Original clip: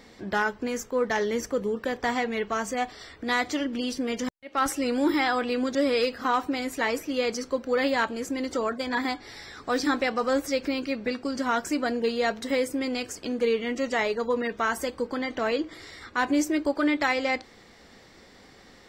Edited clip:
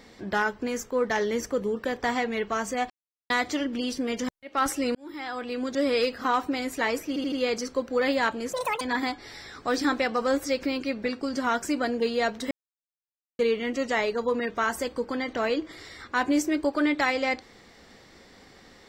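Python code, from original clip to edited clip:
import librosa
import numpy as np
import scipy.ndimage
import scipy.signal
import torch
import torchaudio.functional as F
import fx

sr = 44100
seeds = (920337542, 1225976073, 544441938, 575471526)

y = fx.edit(x, sr, fx.silence(start_s=2.9, length_s=0.4),
    fx.fade_in_span(start_s=4.95, length_s=1.0),
    fx.stutter(start_s=7.08, slice_s=0.08, count=4),
    fx.speed_span(start_s=8.29, length_s=0.54, speed=1.93),
    fx.silence(start_s=12.53, length_s=0.88), tone=tone)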